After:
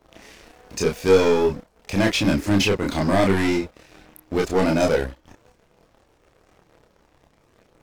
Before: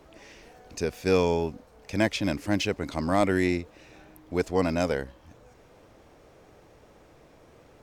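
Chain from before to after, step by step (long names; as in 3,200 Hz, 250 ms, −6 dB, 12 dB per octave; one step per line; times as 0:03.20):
leveller curve on the samples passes 3
multi-voice chorus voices 4, 0.46 Hz, delay 29 ms, depth 3.2 ms
level +1.5 dB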